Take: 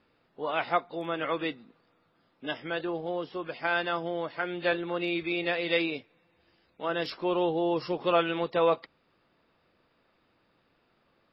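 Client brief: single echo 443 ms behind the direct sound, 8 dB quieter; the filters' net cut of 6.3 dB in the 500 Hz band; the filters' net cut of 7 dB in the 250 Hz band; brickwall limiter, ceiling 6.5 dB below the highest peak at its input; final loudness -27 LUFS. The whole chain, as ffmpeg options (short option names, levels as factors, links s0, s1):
-af "equalizer=f=250:t=o:g=-8.5,equalizer=f=500:t=o:g=-5.5,alimiter=limit=0.0944:level=0:latency=1,aecho=1:1:443:0.398,volume=2.51"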